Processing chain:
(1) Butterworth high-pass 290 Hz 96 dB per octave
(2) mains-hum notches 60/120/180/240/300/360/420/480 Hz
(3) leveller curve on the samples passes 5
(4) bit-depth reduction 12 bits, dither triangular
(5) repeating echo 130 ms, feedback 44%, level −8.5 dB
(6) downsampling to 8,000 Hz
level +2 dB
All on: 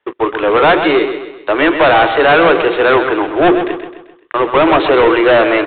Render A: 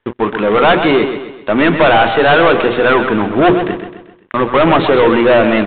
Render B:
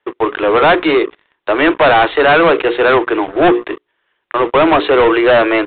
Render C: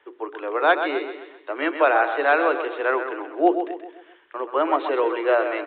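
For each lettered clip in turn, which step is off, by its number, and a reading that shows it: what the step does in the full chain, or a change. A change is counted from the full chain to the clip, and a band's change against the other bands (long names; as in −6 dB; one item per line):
1, 125 Hz band +7.5 dB
5, change in crest factor −2.0 dB
3, change in crest factor +7.0 dB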